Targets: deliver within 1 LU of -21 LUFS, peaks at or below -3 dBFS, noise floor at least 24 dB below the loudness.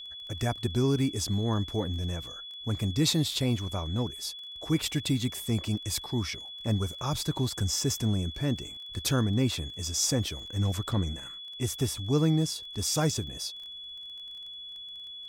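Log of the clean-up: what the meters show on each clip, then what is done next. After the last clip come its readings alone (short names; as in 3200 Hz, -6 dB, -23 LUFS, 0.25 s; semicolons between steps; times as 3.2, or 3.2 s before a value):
ticks 21/s; steady tone 3400 Hz; tone level -40 dBFS; loudness -30.0 LUFS; peak -14.0 dBFS; loudness target -21.0 LUFS
-> de-click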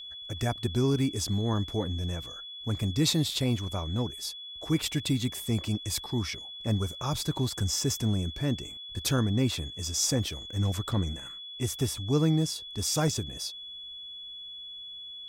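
ticks 0/s; steady tone 3400 Hz; tone level -40 dBFS
-> notch 3400 Hz, Q 30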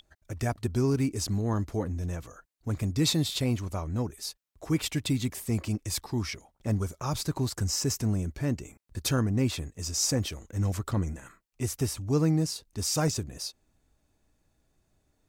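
steady tone none; loudness -30.0 LUFS; peak -14.0 dBFS; loudness target -21.0 LUFS
-> gain +9 dB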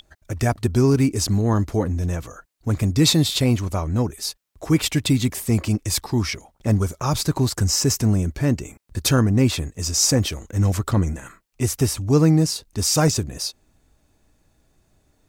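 loudness -21.0 LUFS; peak -5.0 dBFS; noise floor -65 dBFS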